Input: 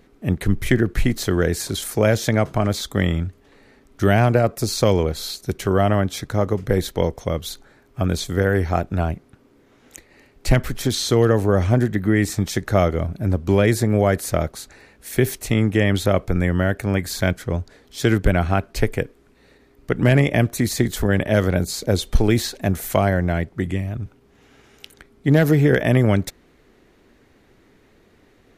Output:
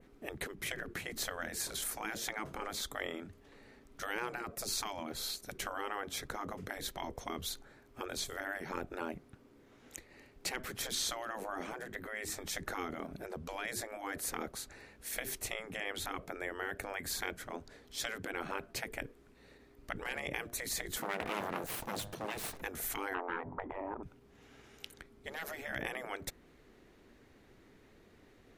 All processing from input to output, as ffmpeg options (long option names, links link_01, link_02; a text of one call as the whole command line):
ffmpeg -i in.wav -filter_complex "[0:a]asettb=1/sr,asplit=3[link_01][link_02][link_03];[link_01]atrim=end=21.004[link_04];[link_02]atrim=start=21:end=22.62,asetpts=PTS-STARTPTS,afade=type=in:duration=0.004:curve=qsin,afade=type=out:start_time=1.616:duration=0.004:curve=qsin,bandreject=frequency=101.6:width_type=h:width=4,bandreject=frequency=203.2:width_type=h:width=4,bandreject=frequency=304.8:width_type=h:width=4,bandreject=frequency=406.4:width_type=h:width=4,bandreject=frequency=508:width_type=h:width=4,bandreject=frequency=609.6:width_type=h:width=4,bandreject=frequency=711.2:width_type=h:width=4,bandreject=frequency=812.8:width_type=h:width=4,bandreject=frequency=914.4:width_type=h:width=4,bandreject=frequency=1016:width_type=h:width=4,bandreject=frequency=1117.6:width_type=h:width=4,bandreject=frequency=1219.2:width_type=h:width=4,bandreject=frequency=1320.8:width_type=h:width=4,bandreject=frequency=1422.4:width_type=h:width=4,bandreject=frequency=1524:width_type=h:width=4,bandreject=frequency=1625.6:width_type=h:width=4,bandreject=frequency=1727.2:width_type=h:width=4,bandreject=frequency=1828.8:width_type=h:width=4,bandreject=frequency=1930.4:width_type=h:width=4,aeval=exprs='abs(val(0))':channel_layout=same[link_05];[link_03]atrim=start=22.616[link_06];[link_04][link_05]acrossfade=duration=0.004:curve1=hsin:curve2=qsin[link_07];[link_07][link_06]acrossfade=duration=0.004:curve1=qsin:curve2=hsin,asettb=1/sr,asplit=3[link_08][link_09][link_10];[link_08]atrim=end=23.144[link_11];[link_09]atrim=start=23.14:end=24.03,asetpts=PTS-STARTPTS,afade=type=in:duration=0.004:curve=qsin,afade=type=out:start_time=0.886:duration=0.004:curve=qsin,lowpass=frequency=950:width_type=q:width=6.9,bandreject=frequency=50:width_type=h:width=6,bandreject=frequency=100:width_type=h:width=6,bandreject=frequency=150:width_type=h:width=6,bandreject=frequency=200:width_type=h:width=6,bandreject=frequency=250:width_type=h:width=6,bandreject=frequency=300:width_type=h:width=6,aeval=exprs='0.501*sin(PI/2*1.78*val(0)/0.501)':channel_layout=same[link_12];[link_10]atrim=start=24.026[link_13];[link_11][link_12]acrossfade=duration=0.004:curve1=hsin:curve2=qsin[link_14];[link_14][link_13]acrossfade=duration=0.004:curve1=qsin:curve2=hsin,adynamicequalizer=threshold=0.00708:dfrequency=4800:dqfactor=0.92:tfrequency=4800:tqfactor=0.92:attack=5:release=100:ratio=0.375:range=2:mode=cutabove:tftype=bell,acompressor=threshold=-18dB:ratio=6,afftfilt=real='re*lt(hypot(re,im),0.178)':imag='im*lt(hypot(re,im),0.178)':win_size=1024:overlap=0.75,volume=-6.5dB" out.wav